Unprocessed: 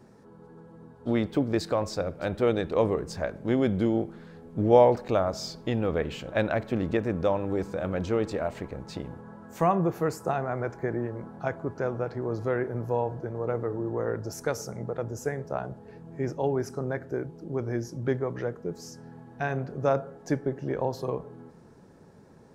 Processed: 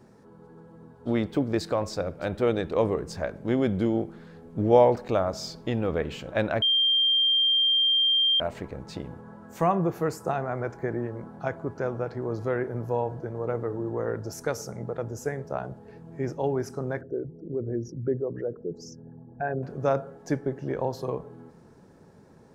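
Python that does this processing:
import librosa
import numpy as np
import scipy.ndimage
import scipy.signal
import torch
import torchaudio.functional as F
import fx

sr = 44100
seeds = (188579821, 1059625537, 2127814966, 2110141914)

y = fx.envelope_sharpen(x, sr, power=2.0, at=(17.01, 19.63))
y = fx.edit(y, sr, fx.bleep(start_s=6.62, length_s=1.78, hz=3180.0, db=-19.0), tone=tone)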